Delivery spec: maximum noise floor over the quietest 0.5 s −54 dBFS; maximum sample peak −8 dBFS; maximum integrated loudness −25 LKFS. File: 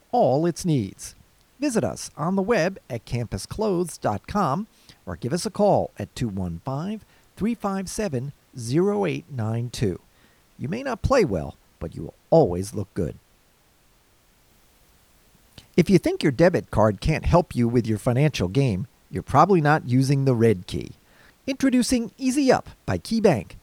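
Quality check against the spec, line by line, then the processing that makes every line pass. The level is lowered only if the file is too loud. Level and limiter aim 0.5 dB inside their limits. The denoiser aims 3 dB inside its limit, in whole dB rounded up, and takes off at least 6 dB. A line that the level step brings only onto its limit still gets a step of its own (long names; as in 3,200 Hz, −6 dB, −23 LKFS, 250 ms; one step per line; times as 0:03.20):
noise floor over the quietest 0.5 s −60 dBFS: in spec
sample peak −4.0 dBFS: out of spec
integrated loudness −23.5 LKFS: out of spec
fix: level −2 dB
brickwall limiter −8.5 dBFS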